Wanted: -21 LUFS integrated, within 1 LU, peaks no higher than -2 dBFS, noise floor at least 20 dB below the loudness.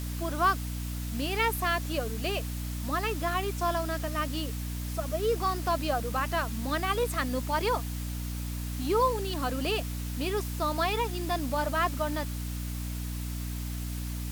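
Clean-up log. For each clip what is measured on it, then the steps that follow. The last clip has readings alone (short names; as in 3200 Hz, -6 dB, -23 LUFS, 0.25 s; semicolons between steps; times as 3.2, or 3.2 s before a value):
hum 60 Hz; harmonics up to 300 Hz; hum level -32 dBFS; noise floor -35 dBFS; noise floor target -51 dBFS; loudness -30.5 LUFS; peak -13.0 dBFS; loudness target -21.0 LUFS
-> de-hum 60 Hz, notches 5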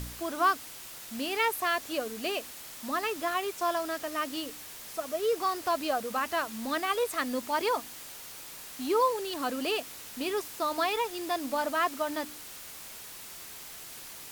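hum none; noise floor -45 dBFS; noise floor target -51 dBFS
-> denoiser 6 dB, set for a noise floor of -45 dBFS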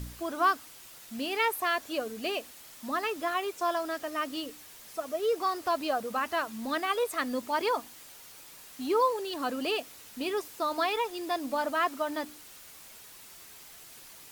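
noise floor -50 dBFS; noise floor target -51 dBFS
-> denoiser 6 dB, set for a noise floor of -50 dBFS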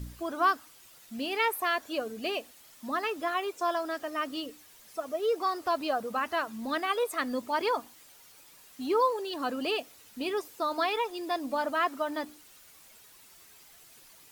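noise floor -56 dBFS; loudness -31.0 LUFS; peak -14.0 dBFS; loudness target -21.0 LUFS
-> gain +10 dB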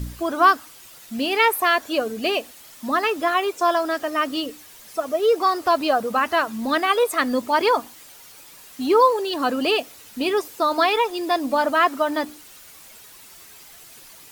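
loudness -21.0 LUFS; peak -4.0 dBFS; noise floor -46 dBFS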